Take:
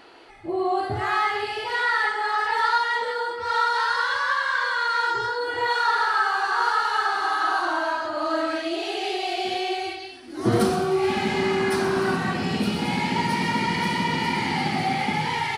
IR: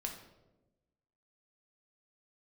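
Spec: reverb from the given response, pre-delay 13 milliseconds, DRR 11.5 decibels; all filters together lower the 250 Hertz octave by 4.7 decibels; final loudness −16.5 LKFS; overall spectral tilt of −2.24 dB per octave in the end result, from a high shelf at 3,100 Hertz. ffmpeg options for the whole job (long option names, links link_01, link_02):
-filter_complex "[0:a]equalizer=frequency=250:width_type=o:gain=-7,highshelf=frequency=3100:gain=-5,asplit=2[link_01][link_02];[1:a]atrim=start_sample=2205,adelay=13[link_03];[link_02][link_03]afir=irnorm=-1:irlink=0,volume=-11dB[link_04];[link_01][link_04]amix=inputs=2:normalize=0,volume=8dB"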